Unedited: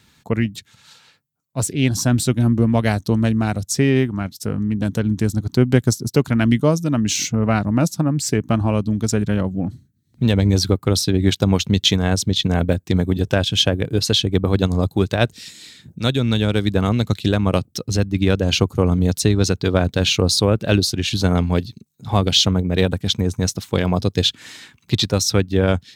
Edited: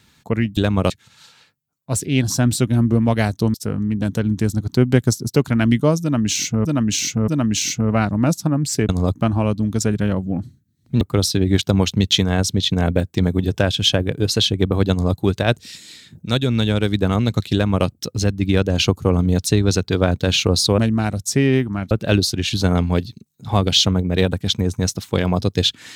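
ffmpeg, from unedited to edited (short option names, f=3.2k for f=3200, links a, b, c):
-filter_complex "[0:a]asplit=11[a][b][c][d][e][f][g][h][i][j][k];[a]atrim=end=0.572[l];[b]atrim=start=17.258:end=17.592[m];[c]atrim=start=0.568:end=3.212[n];[d]atrim=start=4.338:end=7.452[o];[e]atrim=start=6.818:end=7.452[p];[f]atrim=start=6.818:end=8.432[q];[g]atrim=start=14.638:end=14.902[r];[h]atrim=start=8.428:end=10.292[s];[i]atrim=start=10.738:end=20.512[t];[j]atrim=start=3.208:end=4.342[u];[k]atrim=start=20.508[v];[l][m]acrossfade=d=0.004:c1=hsin:c2=hsin[w];[w][n]acrossfade=d=0.004:c1=hsin:c2=hsin[x];[x][o]acrossfade=d=0.004:c1=hsin:c2=hsin[y];[y][p]acrossfade=d=0.004:c1=hsin:c2=hsin[z];[z][q]acrossfade=d=0.004:c1=hsin:c2=hsin[aa];[aa][r]acrossfade=d=0.004:c1=hsin:c2=hsin[ab];[ab][s]acrossfade=d=0.004:c1=hsin:c2=hsin[ac];[ac][t]acrossfade=d=0.004:c1=hsin:c2=hsin[ad];[ad][u]acrossfade=d=0.004:c1=hsin:c2=hsin[ae];[ae][v]acrossfade=d=0.004:c1=hsin:c2=hsin"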